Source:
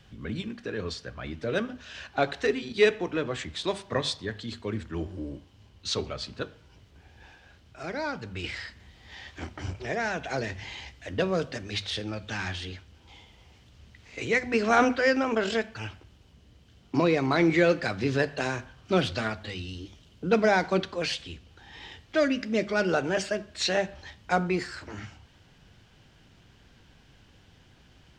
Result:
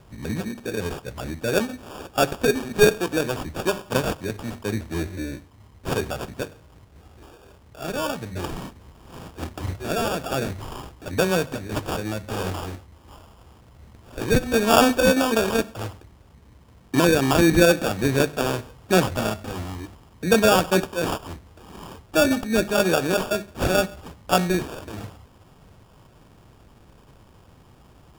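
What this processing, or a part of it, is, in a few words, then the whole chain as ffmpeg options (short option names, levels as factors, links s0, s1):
crushed at another speed: -af "asetrate=35280,aresample=44100,acrusher=samples=27:mix=1:aa=0.000001,asetrate=55125,aresample=44100,volume=1.88"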